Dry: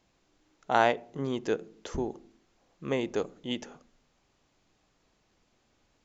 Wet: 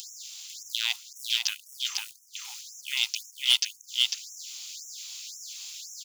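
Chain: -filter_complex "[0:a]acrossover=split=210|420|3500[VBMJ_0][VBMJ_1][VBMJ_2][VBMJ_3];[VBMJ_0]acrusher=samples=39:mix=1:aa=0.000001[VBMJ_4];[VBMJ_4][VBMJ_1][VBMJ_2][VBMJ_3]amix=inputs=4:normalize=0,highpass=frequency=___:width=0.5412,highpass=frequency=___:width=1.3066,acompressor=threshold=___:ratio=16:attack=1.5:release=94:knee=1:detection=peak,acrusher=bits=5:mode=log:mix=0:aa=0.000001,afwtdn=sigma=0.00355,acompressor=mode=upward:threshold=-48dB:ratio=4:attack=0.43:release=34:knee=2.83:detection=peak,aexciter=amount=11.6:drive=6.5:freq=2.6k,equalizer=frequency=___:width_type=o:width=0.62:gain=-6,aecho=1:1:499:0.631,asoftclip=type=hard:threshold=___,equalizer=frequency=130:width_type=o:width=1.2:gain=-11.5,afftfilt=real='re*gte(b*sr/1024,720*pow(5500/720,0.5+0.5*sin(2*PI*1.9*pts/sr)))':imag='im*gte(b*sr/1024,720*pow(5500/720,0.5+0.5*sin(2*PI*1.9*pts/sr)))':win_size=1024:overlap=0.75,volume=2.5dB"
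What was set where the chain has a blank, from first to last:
54, 54, -28dB, 880, -13.5dB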